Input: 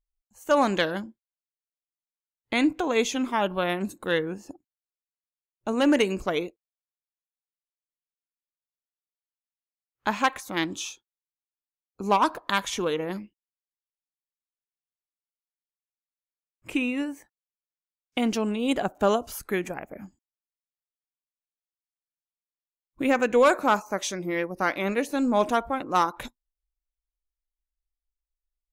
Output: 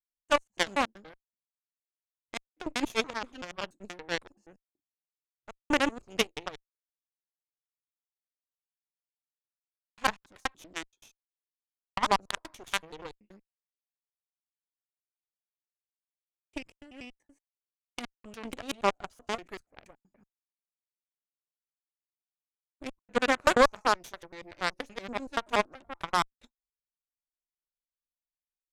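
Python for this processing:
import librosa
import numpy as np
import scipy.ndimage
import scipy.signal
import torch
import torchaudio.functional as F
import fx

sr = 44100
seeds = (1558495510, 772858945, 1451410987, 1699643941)

y = fx.block_reorder(x, sr, ms=95.0, group=3)
y = scipy.signal.sosfilt(scipy.signal.butter(4, 9700.0, 'lowpass', fs=sr, output='sos'), y)
y = fx.cheby_harmonics(y, sr, harmonics=(2, 3, 5, 6), levels_db=(-21, -8, -26, -36), full_scale_db=-10.0)
y = y * 10.0 ** (3.0 / 20.0)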